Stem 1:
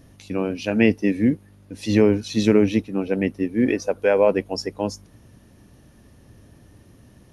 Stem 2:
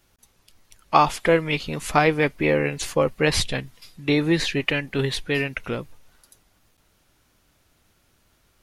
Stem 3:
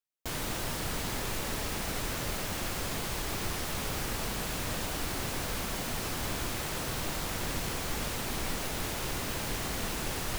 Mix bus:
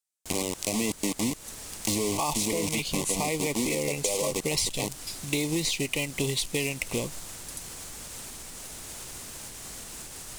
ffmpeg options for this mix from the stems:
-filter_complex "[0:a]highshelf=f=8700:g=7.5,asoftclip=type=tanh:threshold=0.376,acrusher=bits=3:mix=0:aa=0.000001,volume=0.891[s0];[1:a]acrusher=bits=3:mode=log:mix=0:aa=0.000001,adelay=1250,volume=1.19[s1];[2:a]alimiter=level_in=2.66:limit=0.0631:level=0:latency=1:release=384,volume=0.376,volume=0.668[s2];[s0][s1]amix=inputs=2:normalize=0,asuperstop=centerf=1500:order=12:qfactor=1.9,alimiter=limit=0.266:level=0:latency=1:release=27,volume=1[s3];[s2][s3]amix=inputs=2:normalize=0,equalizer=f=8300:t=o:w=1.4:g=14,acompressor=threshold=0.0562:ratio=6"

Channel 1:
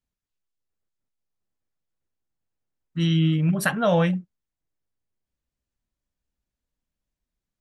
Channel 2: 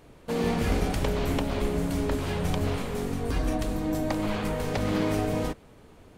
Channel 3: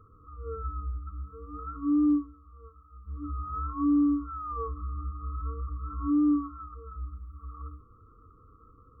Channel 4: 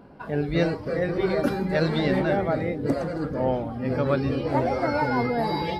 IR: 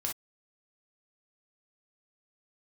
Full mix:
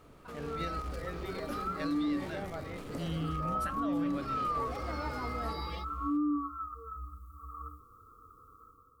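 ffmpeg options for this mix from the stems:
-filter_complex "[0:a]volume=0.158[s0];[1:a]alimiter=limit=0.0631:level=0:latency=1,asoftclip=type=tanh:threshold=0.0112,volume=0.562[s1];[2:a]lowshelf=f=430:g=-11.5,dynaudnorm=f=130:g=7:m=2.66,crystalizer=i=3:c=0,volume=0.596[s2];[3:a]highshelf=f=2000:g=11,adelay=50,volume=0.133[s3];[s0][s1][s2][s3]amix=inputs=4:normalize=0,alimiter=level_in=1.12:limit=0.0631:level=0:latency=1:release=108,volume=0.891"

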